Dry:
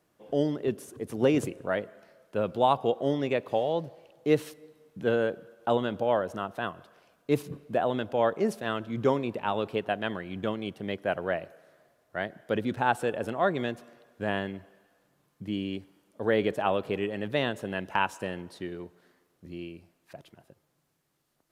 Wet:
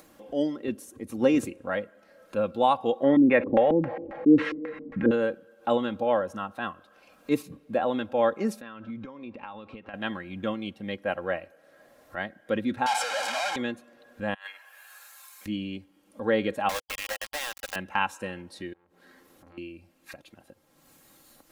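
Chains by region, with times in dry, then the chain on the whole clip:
3.03–5.11 s: LFO low-pass square 3.7 Hz 300–1900 Hz + level flattener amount 50%
8.61–9.94 s: compression 16:1, threshold -34 dBFS + distance through air 130 m
12.86–13.56 s: one-bit comparator + band-pass 610–6900 Hz + comb 1.3 ms, depth 62%
14.34–15.46 s: high-pass 880 Hz 24 dB/octave + treble shelf 5.5 kHz +7.5 dB + compressor with a negative ratio -43 dBFS, ratio -0.5
16.69–17.76 s: steep high-pass 540 Hz + compression 5:1, threshold -38 dBFS + companded quantiser 2-bit
18.73–19.58 s: compression 16:1, threshold -52 dBFS + transformer saturation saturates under 1.7 kHz
whole clip: upward compressor, threshold -35 dBFS; comb 3.7 ms, depth 56%; spectral noise reduction 6 dB

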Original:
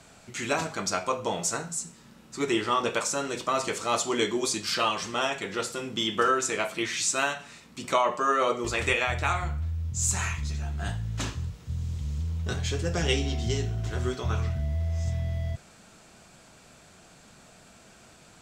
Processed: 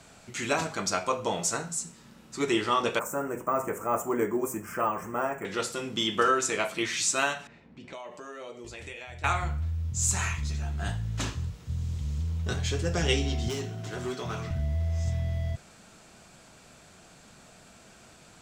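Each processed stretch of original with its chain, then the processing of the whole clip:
2.99–5.45 s: Butterworth band-stop 4 kHz, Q 0.52 + careless resampling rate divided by 2×, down filtered, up hold
7.47–9.24 s: level-controlled noise filter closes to 1.3 kHz, open at -24.5 dBFS + peaking EQ 1.2 kHz -10.5 dB 0.51 oct + compression 2.5:1, threshold -46 dBFS
13.48–14.51 s: high-pass 130 Hz 24 dB/octave + hard clipper -28.5 dBFS
whole clip: none

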